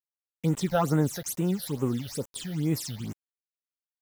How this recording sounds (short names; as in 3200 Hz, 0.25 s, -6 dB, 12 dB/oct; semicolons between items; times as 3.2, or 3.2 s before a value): a quantiser's noise floor 8-bit, dither none; phasing stages 8, 2.3 Hz, lowest notch 290–4800 Hz